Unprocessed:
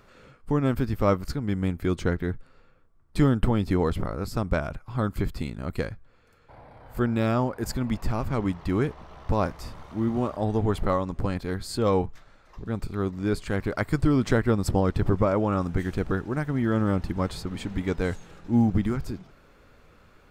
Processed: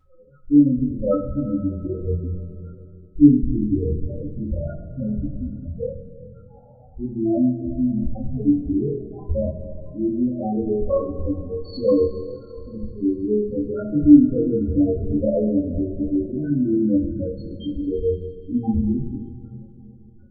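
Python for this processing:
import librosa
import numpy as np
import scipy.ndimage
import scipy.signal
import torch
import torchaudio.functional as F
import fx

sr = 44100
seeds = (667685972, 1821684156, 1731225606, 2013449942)

y = fx.room_flutter(x, sr, wall_m=4.1, rt60_s=0.38)
y = fx.spec_topn(y, sr, count=4)
y = fx.rev_double_slope(y, sr, seeds[0], early_s=0.35, late_s=3.1, knee_db=-18, drr_db=-7.5)
y = F.gain(torch.from_numpy(y), -3.0).numpy()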